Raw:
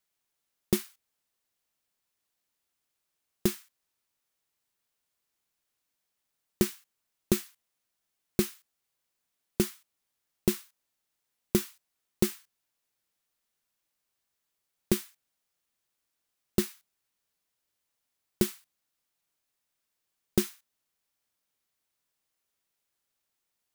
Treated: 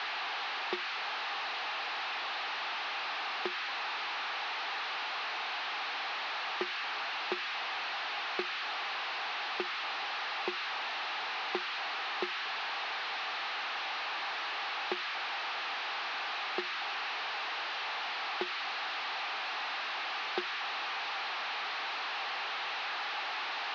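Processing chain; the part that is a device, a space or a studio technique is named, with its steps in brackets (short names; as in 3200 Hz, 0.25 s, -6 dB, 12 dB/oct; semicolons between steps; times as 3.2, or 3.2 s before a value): digital answering machine (BPF 380–3300 Hz; delta modulation 32 kbps, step -33 dBFS; speaker cabinet 460–4400 Hz, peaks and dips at 550 Hz -6 dB, 800 Hz +9 dB, 1200 Hz +5 dB, 1700 Hz +3 dB, 2600 Hz +4 dB, 4100 Hz +3 dB)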